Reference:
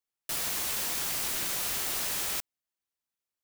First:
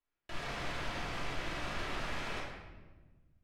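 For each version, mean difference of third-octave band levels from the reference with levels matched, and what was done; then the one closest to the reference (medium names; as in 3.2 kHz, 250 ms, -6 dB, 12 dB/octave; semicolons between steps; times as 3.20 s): 11.0 dB: low-pass 2.4 kHz 12 dB/octave; bass shelf 71 Hz +10.5 dB; peak limiter -38.5 dBFS, peak gain reduction 10 dB; simulated room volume 880 m³, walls mixed, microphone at 2.9 m; trim +1 dB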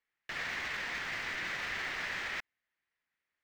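7.5 dB: distance through air 190 m; peak limiter -39.5 dBFS, peak gain reduction 11 dB; peaking EQ 1.9 kHz +15 dB 0.86 oct; trim +3 dB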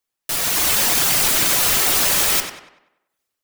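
1.5 dB: reverb removal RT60 0.73 s; level rider gain up to 8 dB; on a send: tape echo 95 ms, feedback 48%, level -6 dB, low-pass 3.6 kHz; on the sum: simulated room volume 150 m³, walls furnished, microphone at 0.33 m; trim +8.5 dB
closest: third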